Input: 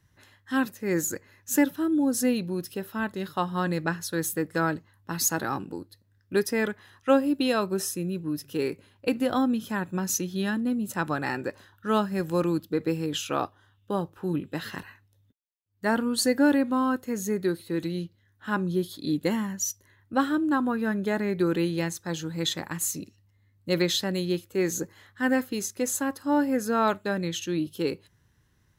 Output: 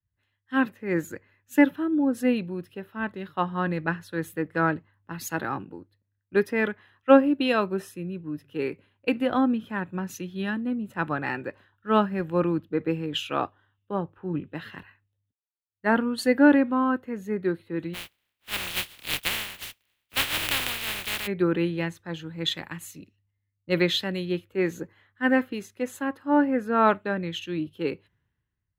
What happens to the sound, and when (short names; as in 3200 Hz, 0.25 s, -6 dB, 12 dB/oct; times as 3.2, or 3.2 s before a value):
17.93–21.26 spectral contrast lowered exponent 0.11
whole clip: resonant high shelf 4000 Hz -12.5 dB, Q 1.5; three-band expander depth 70%